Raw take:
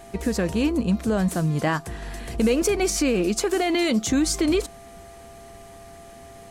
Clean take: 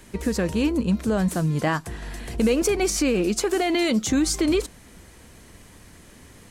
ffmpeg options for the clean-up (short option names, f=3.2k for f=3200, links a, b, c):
-af "bandreject=f=396.7:t=h:w=4,bandreject=f=793.4:t=h:w=4,bandreject=f=1.1901k:t=h:w=4,bandreject=f=680:w=30"